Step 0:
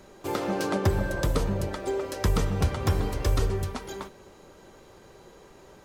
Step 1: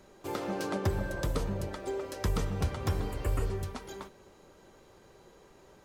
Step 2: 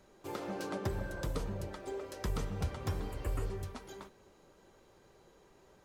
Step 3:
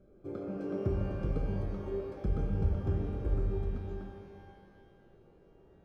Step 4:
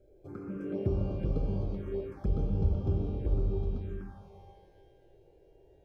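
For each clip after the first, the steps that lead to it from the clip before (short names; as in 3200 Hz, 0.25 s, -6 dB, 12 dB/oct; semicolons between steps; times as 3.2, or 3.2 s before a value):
spectral repair 3.12–3.48, 3000–6700 Hz; gain -6 dB
flange 1.9 Hz, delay 1.2 ms, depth 6.7 ms, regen -69%; gain -1 dB
running mean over 47 samples; shimmer reverb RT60 1.8 s, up +12 st, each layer -8 dB, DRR 3.5 dB; gain +4 dB
envelope phaser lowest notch 190 Hz, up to 1800 Hz, full sweep at -30 dBFS; gain +2 dB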